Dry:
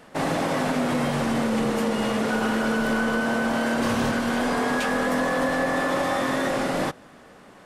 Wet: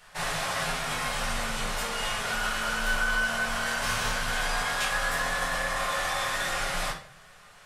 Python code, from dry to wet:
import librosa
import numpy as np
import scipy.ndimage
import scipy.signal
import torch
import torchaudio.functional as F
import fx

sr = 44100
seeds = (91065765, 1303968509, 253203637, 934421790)

y = fx.tone_stack(x, sr, knobs='10-0-10')
y = fx.room_shoebox(y, sr, seeds[0], volume_m3=50.0, walls='mixed', distance_m=1.0)